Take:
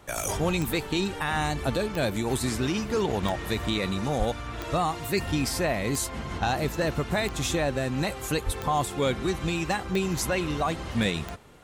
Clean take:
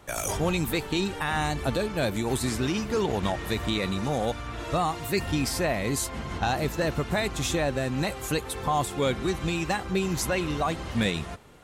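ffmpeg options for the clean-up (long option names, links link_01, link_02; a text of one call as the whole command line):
ffmpeg -i in.wav -filter_complex "[0:a]adeclick=threshold=4,asplit=3[link_01][link_02][link_03];[link_01]afade=type=out:start_time=4.18:duration=0.02[link_04];[link_02]highpass=frequency=140:width=0.5412,highpass=frequency=140:width=1.3066,afade=type=in:start_time=4.18:duration=0.02,afade=type=out:start_time=4.3:duration=0.02[link_05];[link_03]afade=type=in:start_time=4.3:duration=0.02[link_06];[link_04][link_05][link_06]amix=inputs=3:normalize=0,asplit=3[link_07][link_08][link_09];[link_07]afade=type=out:start_time=8.45:duration=0.02[link_10];[link_08]highpass=frequency=140:width=0.5412,highpass=frequency=140:width=1.3066,afade=type=in:start_time=8.45:duration=0.02,afade=type=out:start_time=8.57:duration=0.02[link_11];[link_09]afade=type=in:start_time=8.57:duration=0.02[link_12];[link_10][link_11][link_12]amix=inputs=3:normalize=0" out.wav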